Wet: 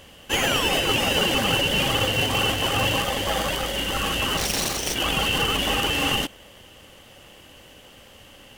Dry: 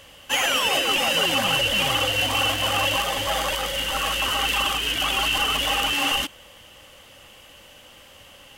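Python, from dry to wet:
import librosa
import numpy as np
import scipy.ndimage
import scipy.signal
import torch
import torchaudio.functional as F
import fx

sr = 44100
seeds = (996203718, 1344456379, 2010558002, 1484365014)

p1 = fx.self_delay(x, sr, depth_ms=0.37, at=(4.37, 4.96))
p2 = fx.sample_hold(p1, sr, seeds[0], rate_hz=1300.0, jitter_pct=0)
p3 = p1 + (p2 * 10.0 ** (-5.0 / 20.0))
y = p3 * 10.0 ** (-1.5 / 20.0)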